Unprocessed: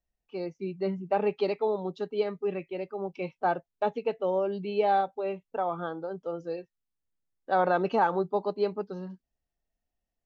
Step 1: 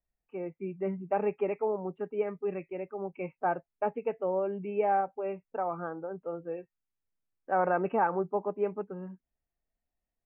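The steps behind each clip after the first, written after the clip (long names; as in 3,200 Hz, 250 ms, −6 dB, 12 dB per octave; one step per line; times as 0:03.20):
Butterworth low-pass 2,600 Hz 72 dB per octave
level −2.5 dB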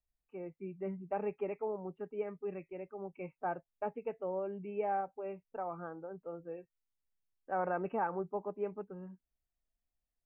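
low-shelf EQ 92 Hz +8 dB
level −7.5 dB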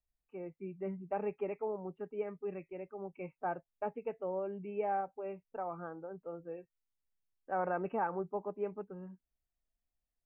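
no processing that can be heard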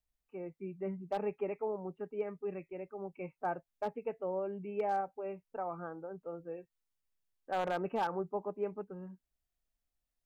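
wave folding −26.5 dBFS
level +1 dB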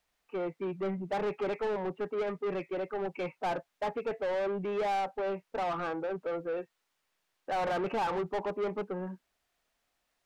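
mid-hump overdrive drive 26 dB, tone 2,200 Hz, clips at −25 dBFS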